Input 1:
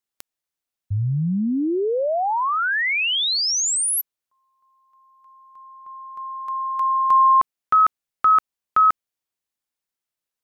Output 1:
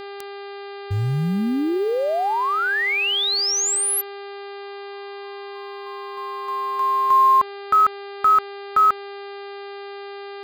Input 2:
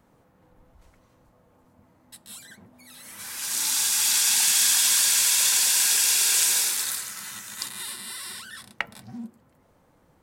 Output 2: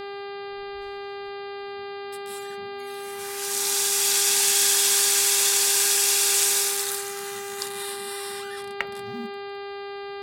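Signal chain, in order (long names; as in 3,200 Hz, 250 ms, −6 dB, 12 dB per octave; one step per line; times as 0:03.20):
floating-point word with a short mantissa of 4 bits
hum with harmonics 400 Hz, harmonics 12, −35 dBFS −6 dB per octave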